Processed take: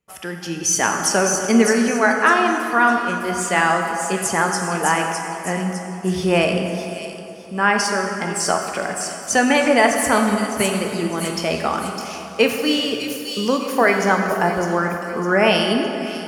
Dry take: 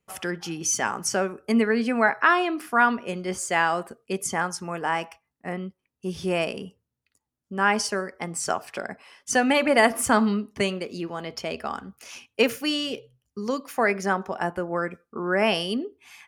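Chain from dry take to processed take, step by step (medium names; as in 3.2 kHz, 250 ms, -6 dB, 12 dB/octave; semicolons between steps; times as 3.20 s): on a send: feedback echo behind a high-pass 607 ms, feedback 39%, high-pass 4.4 kHz, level -3.5 dB; on the sum: level rider gain up to 10.5 dB; plate-style reverb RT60 3.1 s, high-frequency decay 0.55×, DRR 2.5 dB; trim -1.5 dB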